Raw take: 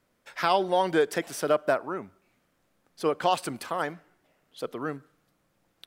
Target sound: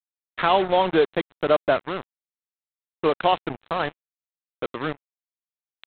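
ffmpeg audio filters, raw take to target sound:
-af "adynamicequalizer=threshold=0.00794:dfrequency=1800:dqfactor=1.6:tfrequency=1800:tqfactor=1.6:attack=5:release=100:ratio=0.375:range=2.5:mode=cutabove:tftype=bell,aresample=8000,acrusher=bits=4:mix=0:aa=0.5,aresample=44100,volume=1.68"

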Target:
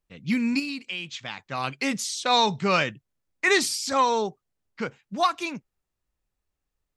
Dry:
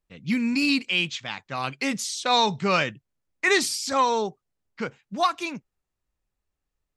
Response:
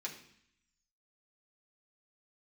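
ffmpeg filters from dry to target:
-filter_complex "[0:a]asettb=1/sr,asplit=3[s0][s1][s2];[s0]atrim=end=0.594[s3];[s1]atrim=start=0.59:end=1.39,asetpts=PTS-STARTPTS,afade=t=in:d=0.004:c=qsin,afade=t=out:st=0.796:d=0.004:c=qsin,acompressor=threshold=0.0355:ratio=10[s4];[s2]atrim=start=1.386[s5];[s3][s4]acrossfade=d=0.004:c1=hsin:c2=qsin[s6];[s6][s5]acrossfade=d=0.004:c1=qsin:c2=hsin"

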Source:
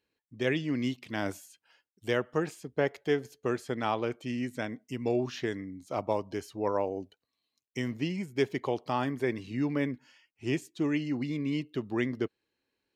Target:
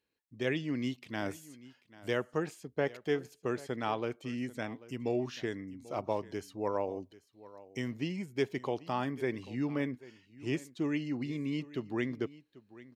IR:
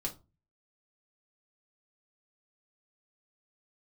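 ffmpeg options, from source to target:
-af "aecho=1:1:790:0.112,volume=0.668"

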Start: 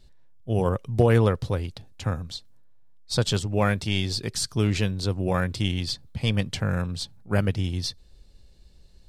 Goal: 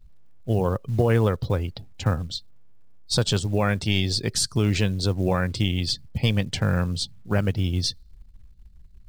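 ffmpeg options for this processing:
-af "alimiter=limit=0.168:level=0:latency=1:release=301,afftdn=nr=23:nf=-49,acrusher=bits=8:mode=log:mix=0:aa=0.000001,volume=1.68"

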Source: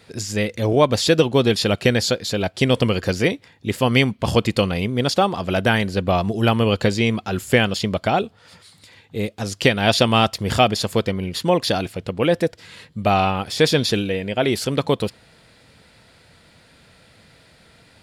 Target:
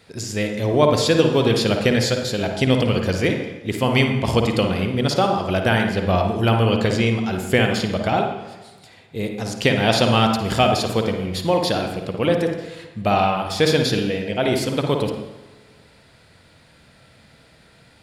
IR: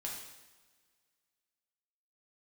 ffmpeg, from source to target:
-filter_complex "[0:a]asplit=2[s0][s1];[1:a]atrim=start_sample=2205,highshelf=f=2900:g=-11,adelay=54[s2];[s1][s2]afir=irnorm=-1:irlink=0,volume=0.944[s3];[s0][s3]amix=inputs=2:normalize=0,volume=0.794"

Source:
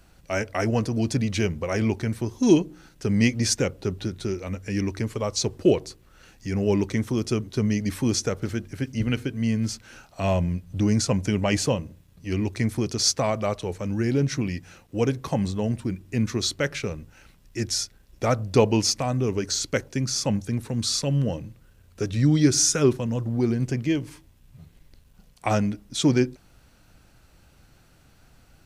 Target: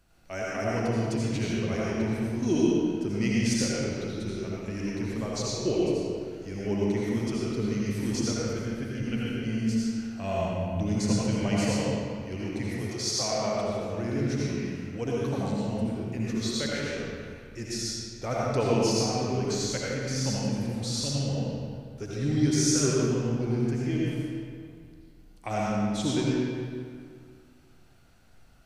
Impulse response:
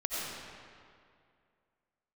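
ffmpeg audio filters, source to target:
-filter_complex "[0:a]asettb=1/sr,asplit=3[s0][s1][s2];[s0]atrim=end=12.634[s3];[s1]atrim=start=12.63:end=13.21,asetpts=PTS-STARTPTS,afade=t=in:d=0.004:c=qsin,afade=t=out:st=0.576:d=0.004:c=qsin,highpass=f=370:w=0.5412,highpass=f=370:w=1.3066[s4];[s2]atrim=start=13.206[s5];[s3][s4]acrossfade=d=0.004:c1=hsin:c2=qsin[s6];[s6][s5]acrossfade=d=0.004:c1=qsin:c2=hsin[s7];[1:a]atrim=start_sample=2205,asetrate=48510,aresample=44100[s8];[s7][s8]afir=irnorm=-1:irlink=0,volume=0.376"

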